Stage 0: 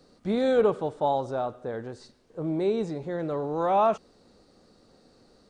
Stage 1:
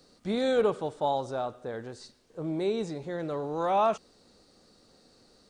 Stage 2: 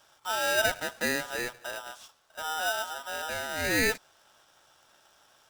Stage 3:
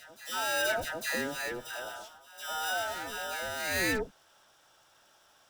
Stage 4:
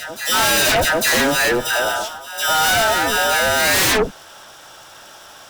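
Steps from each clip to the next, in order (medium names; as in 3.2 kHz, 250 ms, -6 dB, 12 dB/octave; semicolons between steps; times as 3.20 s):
treble shelf 2.3 kHz +8.5 dB; trim -3.5 dB
polarity switched at an audio rate 1.1 kHz; trim -1.5 dB
saturation -21 dBFS, distortion -19 dB; phase dispersion lows, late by 134 ms, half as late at 1.2 kHz; reverse echo 851 ms -15.5 dB; trim -1.5 dB
sine folder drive 13 dB, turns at -17.5 dBFS; trim +5 dB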